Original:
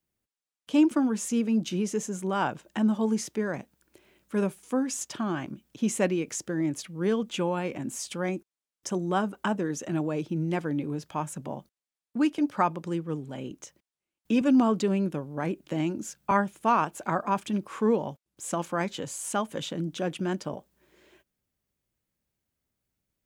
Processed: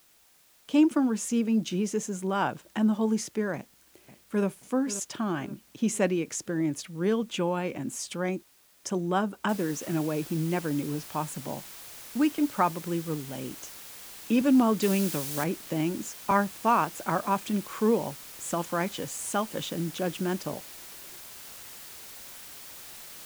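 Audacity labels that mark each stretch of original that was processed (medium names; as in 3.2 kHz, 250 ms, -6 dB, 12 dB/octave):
3.550000	4.460000	echo throw 530 ms, feedback 45%, level -13.5 dB
9.490000	9.490000	noise floor step -61 dB -45 dB
14.820000	15.440000	treble shelf 2.2 kHz +10 dB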